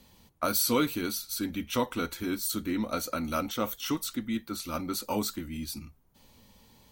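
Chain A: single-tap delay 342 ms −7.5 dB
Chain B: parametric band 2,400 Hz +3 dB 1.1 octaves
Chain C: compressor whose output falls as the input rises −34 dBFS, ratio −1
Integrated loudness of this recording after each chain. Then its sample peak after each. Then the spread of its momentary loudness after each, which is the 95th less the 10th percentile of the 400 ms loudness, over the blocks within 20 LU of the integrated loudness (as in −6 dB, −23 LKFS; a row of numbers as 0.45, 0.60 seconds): −30.5, −31.0, −34.0 LKFS; −13.0, −14.0, −18.5 dBFS; 9, 9, 5 LU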